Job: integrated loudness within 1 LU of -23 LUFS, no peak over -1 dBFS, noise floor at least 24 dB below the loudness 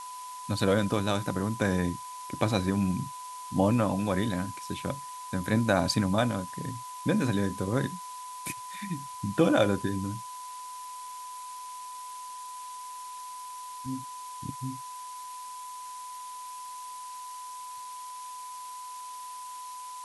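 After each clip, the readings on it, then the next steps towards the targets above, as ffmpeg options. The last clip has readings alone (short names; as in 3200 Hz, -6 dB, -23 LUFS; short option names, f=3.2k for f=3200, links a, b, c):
steady tone 1000 Hz; tone level -39 dBFS; noise floor -41 dBFS; noise floor target -56 dBFS; loudness -32.0 LUFS; peak -9.5 dBFS; loudness target -23.0 LUFS
-> -af "bandreject=f=1k:w=30"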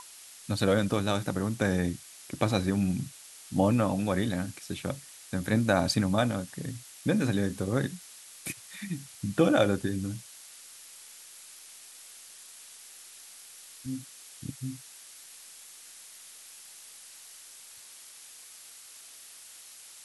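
steady tone none; noise floor -50 dBFS; noise floor target -54 dBFS
-> -af "afftdn=nr=6:nf=-50"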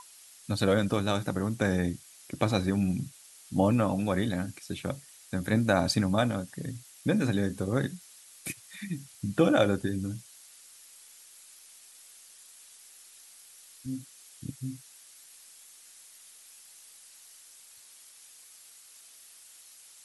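noise floor -54 dBFS; loudness -29.5 LUFS; peak -10.0 dBFS; loudness target -23.0 LUFS
-> -af "volume=6.5dB"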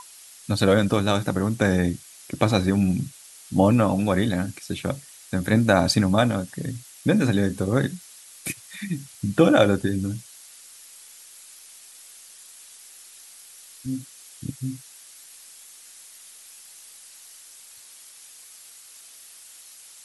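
loudness -23.0 LUFS; peak -3.5 dBFS; noise floor -47 dBFS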